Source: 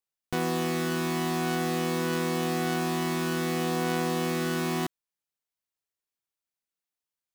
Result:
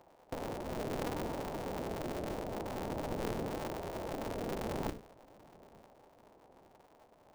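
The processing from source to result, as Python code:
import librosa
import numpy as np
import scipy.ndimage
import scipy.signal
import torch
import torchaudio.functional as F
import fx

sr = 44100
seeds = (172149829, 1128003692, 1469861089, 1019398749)

y = x + 0.5 * 10.0 ** (-30.0 / 20.0) * np.diff(np.sign(x), prepend=np.sign(x[:1]))
y = scipy.signal.sosfilt(scipy.signal.butter(12, 750.0, 'lowpass', fs=sr, output='sos'), y)
y = fx.low_shelf(y, sr, hz=470.0, db=-11.5)
y = fx.hum_notches(y, sr, base_hz=60, count=5)
y = fx.over_compress(y, sr, threshold_db=-44.0, ratio=-0.5)
y = fx.echo_feedback(y, sr, ms=893, feedback_pct=45, wet_db=-22.5)
y = fx.whisperise(y, sr, seeds[0])
y = y * np.sign(np.sin(2.0 * np.pi * 120.0 * np.arange(len(y)) / sr))
y = y * 10.0 ** (9.0 / 20.0)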